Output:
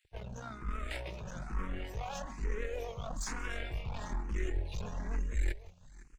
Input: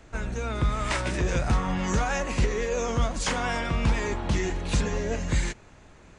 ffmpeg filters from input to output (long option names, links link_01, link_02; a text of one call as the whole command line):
ffmpeg -i in.wav -filter_complex "[0:a]aeval=exprs='if(lt(val(0),0),0.447*val(0),val(0))':channel_layout=same,afftdn=noise_reduction=14:noise_floor=-38,highshelf=frequency=7800:gain=8,areverse,acompressor=threshold=-33dB:ratio=20,areverse,aeval=exprs='(tanh(79.4*val(0)+0.7)-tanh(0.7))/79.4':channel_layout=same,asubboost=boost=3:cutoff=79,acrossover=split=1900[link_01][link_02];[link_01]aeval=exprs='sgn(val(0))*max(abs(val(0))-0.001,0)':channel_layout=same[link_03];[link_03][link_02]amix=inputs=2:normalize=0,aecho=1:1:182|507:0.1|0.106,asplit=2[link_04][link_05];[link_05]afreqshift=1.1[link_06];[link_04][link_06]amix=inputs=2:normalize=1,volume=9dB" out.wav